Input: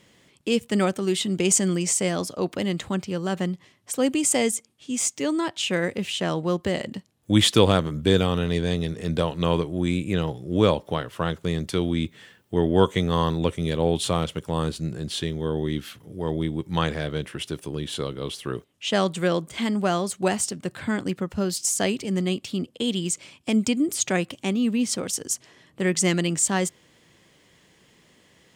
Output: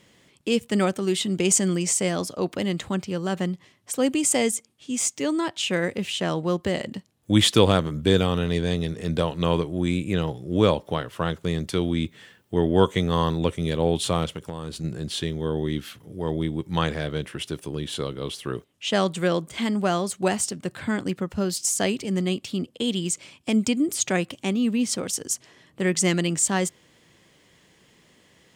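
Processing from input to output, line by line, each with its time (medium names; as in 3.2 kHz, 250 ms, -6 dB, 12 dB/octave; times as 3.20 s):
14.35–14.84 s: compression 12:1, threshold -27 dBFS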